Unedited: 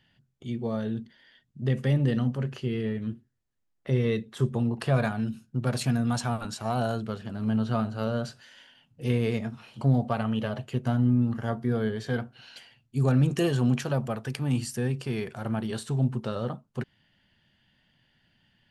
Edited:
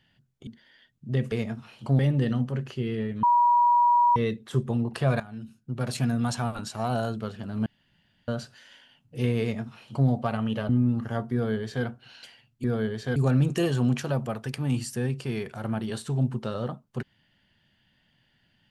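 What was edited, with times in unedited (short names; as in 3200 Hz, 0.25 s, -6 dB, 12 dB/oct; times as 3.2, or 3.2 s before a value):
0.47–1 cut
3.09–4.02 bleep 962 Hz -16.5 dBFS
5.06–5.94 fade in, from -15 dB
7.52–8.14 room tone
9.27–9.94 copy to 1.85
10.55–11.02 cut
11.66–12.18 copy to 12.97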